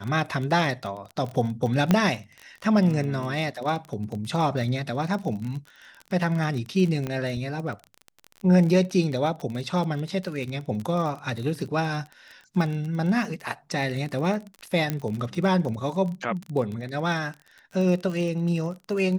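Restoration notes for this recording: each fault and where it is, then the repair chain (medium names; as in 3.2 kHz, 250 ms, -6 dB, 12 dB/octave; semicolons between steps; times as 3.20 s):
crackle 26 per s -30 dBFS
1.91 s: pop -7 dBFS
7.07 s: pop -17 dBFS
14.90 s: pop -12 dBFS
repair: de-click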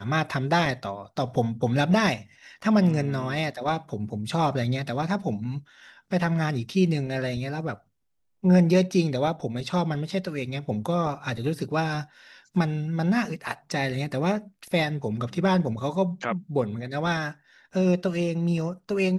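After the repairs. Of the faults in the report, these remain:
nothing left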